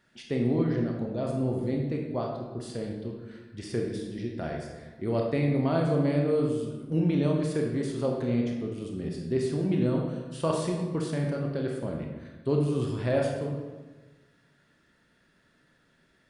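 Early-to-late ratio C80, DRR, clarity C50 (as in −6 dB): 5.0 dB, 0.0 dB, 3.0 dB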